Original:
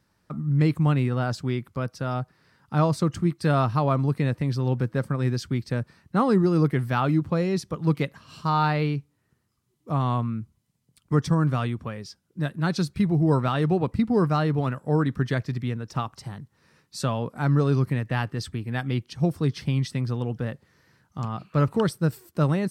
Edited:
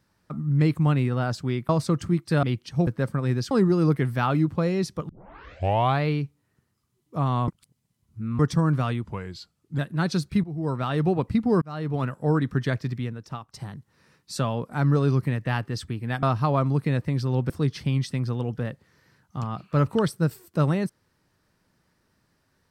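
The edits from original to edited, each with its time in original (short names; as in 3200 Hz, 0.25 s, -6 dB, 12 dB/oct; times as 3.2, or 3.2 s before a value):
1.69–2.82 cut
3.56–4.83 swap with 18.87–19.31
5.47–6.25 cut
7.83 tape start 0.94 s
10.22–11.13 reverse
11.78–12.43 speed 87%
13.08–13.7 fade in, from -17 dB
14.26–14.69 fade in
15.52–16.18 fade out, to -13.5 dB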